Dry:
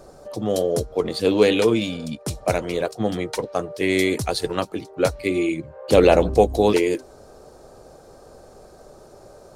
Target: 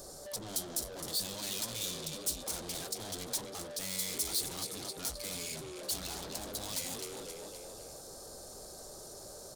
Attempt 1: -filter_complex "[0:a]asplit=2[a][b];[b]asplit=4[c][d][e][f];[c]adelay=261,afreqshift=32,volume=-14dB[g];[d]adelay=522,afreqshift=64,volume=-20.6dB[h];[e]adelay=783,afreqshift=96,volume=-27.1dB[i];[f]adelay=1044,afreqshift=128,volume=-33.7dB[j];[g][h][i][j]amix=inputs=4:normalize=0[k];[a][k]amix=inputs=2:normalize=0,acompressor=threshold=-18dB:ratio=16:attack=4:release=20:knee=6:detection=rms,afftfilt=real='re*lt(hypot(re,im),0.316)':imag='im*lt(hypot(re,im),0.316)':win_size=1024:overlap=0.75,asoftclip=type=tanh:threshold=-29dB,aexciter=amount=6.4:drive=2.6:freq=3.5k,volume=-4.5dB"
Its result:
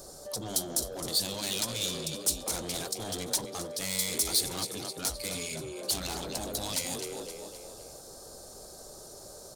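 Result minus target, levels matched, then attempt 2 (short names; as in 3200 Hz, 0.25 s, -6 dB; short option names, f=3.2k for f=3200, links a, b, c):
soft clip: distortion -5 dB
-filter_complex "[0:a]asplit=2[a][b];[b]asplit=4[c][d][e][f];[c]adelay=261,afreqshift=32,volume=-14dB[g];[d]adelay=522,afreqshift=64,volume=-20.6dB[h];[e]adelay=783,afreqshift=96,volume=-27.1dB[i];[f]adelay=1044,afreqshift=128,volume=-33.7dB[j];[g][h][i][j]amix=inputs=4:normalize=0[k];[a][k]amix=inputs=2:normalize=0,acompressor=threshold=-18dB:ratio=16:attack=4:release=20:knee=6:detection=rms,afftfilt=real='re*lt(hypot(re,im),0.316)':imag='im*lt(hypot(re,im),0.316)':win_size=1024:overlap=0.75,asoftclip=type=tanh:threshold=-38.5dB,aexciter=amount=6.4:drive=2.6:freq=3.5k,volume=-4.5dB"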